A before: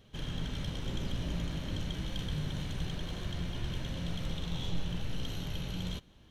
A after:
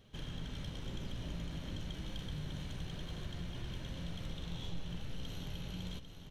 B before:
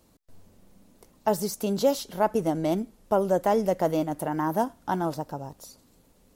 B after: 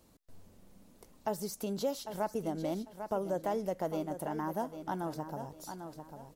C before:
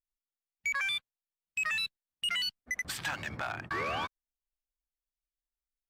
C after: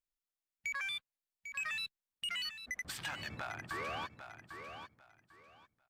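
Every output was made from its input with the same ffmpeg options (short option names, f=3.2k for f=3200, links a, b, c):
-af "aecho=1:1:797|1594|2391:0.251|0.0527|0.0111,acompressor=threshold=-42dB:ratio=1.5,volume=-2.5dB"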